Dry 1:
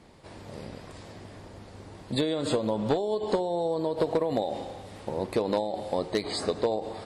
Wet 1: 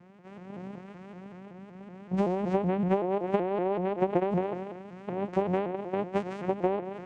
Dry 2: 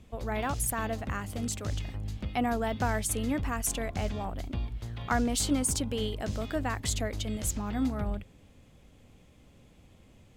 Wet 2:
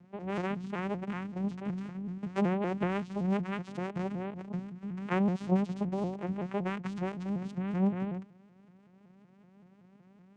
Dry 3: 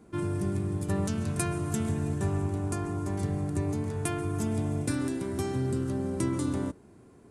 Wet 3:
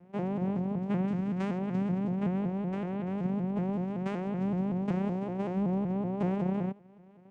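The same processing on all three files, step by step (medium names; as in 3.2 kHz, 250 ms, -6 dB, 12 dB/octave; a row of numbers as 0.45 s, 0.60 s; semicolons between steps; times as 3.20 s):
resonant high shelf 3 kHz -11.5 dB, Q 3; vocoder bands 4, saw 191 Hz; vibrato with a chosen wave saw up 5.3 Hz, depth 160 cents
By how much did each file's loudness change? -0.5 LU, -2.0 LU, -1.0 LU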